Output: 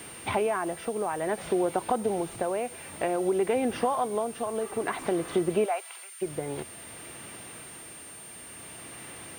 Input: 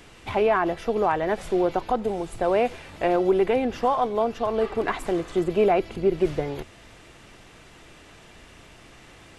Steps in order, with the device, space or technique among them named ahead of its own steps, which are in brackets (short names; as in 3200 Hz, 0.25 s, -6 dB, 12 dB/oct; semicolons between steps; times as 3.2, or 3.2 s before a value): medium wave at night (BPF 110–4500 Hz; compressor 4:1, threshold -27 dBFS, peak gain reduction 10 dB; tremolo 0.55 Hz, depth 45%; whine 9000 Hz -48 dBFS; white noise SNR 24 dB); 5.64–6.21 HPF 550 Hz -> 1400 Hz 24 dB/oct; gain +4 dB